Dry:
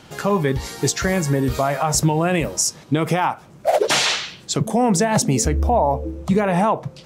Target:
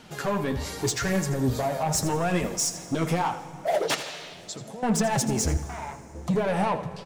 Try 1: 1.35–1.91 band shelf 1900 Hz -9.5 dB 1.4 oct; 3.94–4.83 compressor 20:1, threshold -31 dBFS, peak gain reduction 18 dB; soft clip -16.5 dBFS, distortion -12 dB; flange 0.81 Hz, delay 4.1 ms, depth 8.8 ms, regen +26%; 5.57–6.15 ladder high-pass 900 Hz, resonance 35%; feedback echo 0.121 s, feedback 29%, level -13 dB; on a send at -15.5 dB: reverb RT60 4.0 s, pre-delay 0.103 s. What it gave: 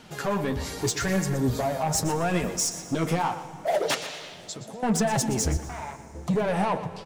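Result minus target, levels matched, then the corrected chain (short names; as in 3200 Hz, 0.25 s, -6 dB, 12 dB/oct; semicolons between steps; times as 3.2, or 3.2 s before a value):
echo 38 ms late
1.35–1.91 band shelf 1900 Hz -9.5 dB 1.4 oct; 3.94–4.83 compressor 20:1, threshold -31 dBFS, peak gain reduction 18 dB; soft clip -16.5 dBFS, distortion -12 dB; flange 0.81 Hz, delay 4.1 ms, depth 8.8 ms, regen +26%; 5.57–6.15 ladder high-pass 900 Hz, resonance 35%; feedback echo 83 ms, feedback 29%, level -13 dB; on a send at -15.5 dB: reverb RT60 4.0 s, pre-delay 0.103 s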